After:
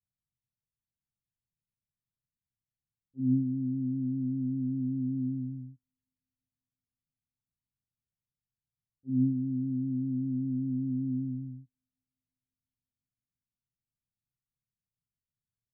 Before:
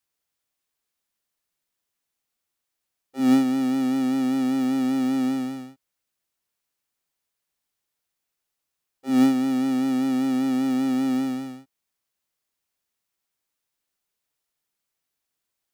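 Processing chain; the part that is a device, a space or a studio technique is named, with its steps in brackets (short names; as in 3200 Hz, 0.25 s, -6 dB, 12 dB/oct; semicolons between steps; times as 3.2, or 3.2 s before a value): the neighbour's flat through the wall (LPF 190 Hz 24 dB/oct; bell 120 Hz +7.5 dB 0.54 oct); thin delay 0.347 s, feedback 65%, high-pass 4400 Hz, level -13.5 dB; gain +1.5 dB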